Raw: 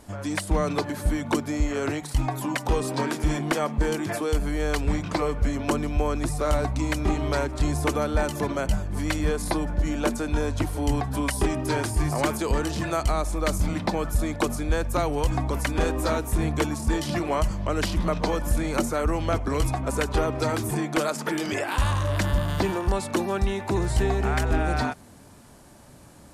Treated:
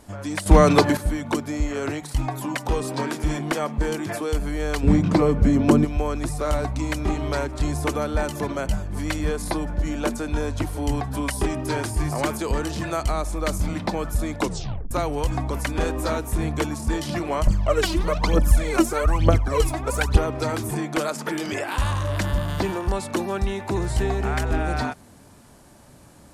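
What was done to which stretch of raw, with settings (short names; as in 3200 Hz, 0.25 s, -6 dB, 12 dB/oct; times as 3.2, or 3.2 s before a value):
0.46–0.97 gain +10.5 dB
4.83–5.85 bell 190 Hz +13 dB 2.6 oct
14.4 tape stop 0.51 s
17.47–20.17 phaser 1.1 Hz, delay 3.2 ms, feedback 75%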